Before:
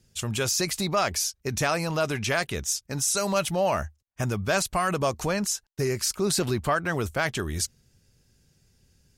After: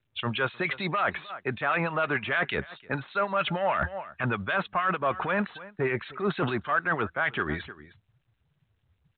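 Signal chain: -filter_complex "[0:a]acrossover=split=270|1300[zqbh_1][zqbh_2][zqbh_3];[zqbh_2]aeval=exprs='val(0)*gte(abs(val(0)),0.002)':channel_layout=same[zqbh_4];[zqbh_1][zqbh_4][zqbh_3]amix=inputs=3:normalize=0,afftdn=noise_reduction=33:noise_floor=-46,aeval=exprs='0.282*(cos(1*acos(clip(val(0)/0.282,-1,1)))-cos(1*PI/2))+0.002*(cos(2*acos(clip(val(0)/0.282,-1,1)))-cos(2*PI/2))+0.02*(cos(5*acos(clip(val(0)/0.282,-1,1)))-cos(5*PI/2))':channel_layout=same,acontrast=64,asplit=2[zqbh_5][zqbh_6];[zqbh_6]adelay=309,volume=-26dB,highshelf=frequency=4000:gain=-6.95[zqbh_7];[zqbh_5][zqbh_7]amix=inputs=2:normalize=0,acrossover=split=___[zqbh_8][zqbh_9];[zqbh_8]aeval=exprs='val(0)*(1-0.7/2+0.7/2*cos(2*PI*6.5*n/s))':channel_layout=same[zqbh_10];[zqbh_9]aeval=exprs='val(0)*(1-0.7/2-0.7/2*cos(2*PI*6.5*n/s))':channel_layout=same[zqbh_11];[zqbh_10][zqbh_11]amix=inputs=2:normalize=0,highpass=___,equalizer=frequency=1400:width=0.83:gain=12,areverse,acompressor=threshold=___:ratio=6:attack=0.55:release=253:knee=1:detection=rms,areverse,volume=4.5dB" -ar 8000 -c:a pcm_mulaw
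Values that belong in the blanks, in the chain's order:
1800, 140, -25dB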